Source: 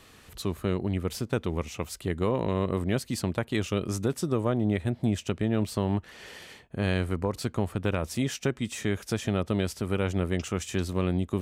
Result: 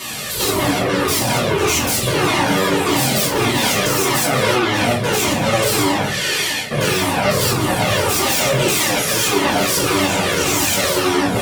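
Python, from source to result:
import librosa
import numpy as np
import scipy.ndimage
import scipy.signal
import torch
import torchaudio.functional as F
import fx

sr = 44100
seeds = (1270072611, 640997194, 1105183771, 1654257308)

y = fx.spec_steps(x, sr, hold_ms=100)
y = fx.high_shelf(y, sr, hz=3900.0, db=10.5)
y = fx.fold_sine(y, sr, drive_db=19, ceiling_db=-16.5)
y = scipy.signal.sosfilt(scipy.signal.butter(2, 140.0, 'highpass', fs=sr, output='sos'), y)
y = y + 10.0 ** (-18.0 / 20.0) * np.pad(y, (int(185 * sr / 1000.0), 0))[:len(y)]
y = fx.room_shoebox(y, sr, seeds[0], volume_m3=58.0, walls='mixed', distance_m=1.8)
y = fx.comb_cascade(y, sr, direction='falling', hz=1.7)
y = y * librosa.db_to_amplitude(-1.0)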